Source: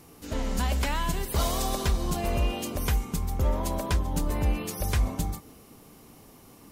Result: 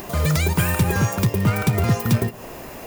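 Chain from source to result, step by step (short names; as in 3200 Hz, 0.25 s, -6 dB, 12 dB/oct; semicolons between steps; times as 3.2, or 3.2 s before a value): on a send at -19 dB: reverb RT60 0.45 s, pre-delay 6 ms; on the sum: upward compressor, threshold -31 dBFS; high shelf 6600 Hz +10.5 dB; speed mistake 33 rpm record played at 78 rpm; low shelf 400 Hz +5 dB; in parallel at -5 dB: companded quantiser 4-bit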